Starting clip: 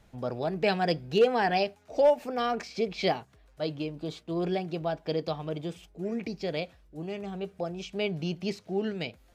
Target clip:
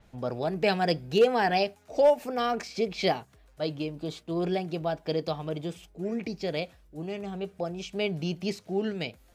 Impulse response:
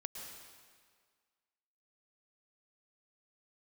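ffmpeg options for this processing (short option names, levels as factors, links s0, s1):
-af "adynamicequalizer=threshold=0.00282:dfrequency=6500:dqfactor=0.7:tfrequency=6500:tqfactor=0.7:attack=5:release=100:ratio=0.375:range=3:mode=boostabove:tftype=highshelf,volume=1.12"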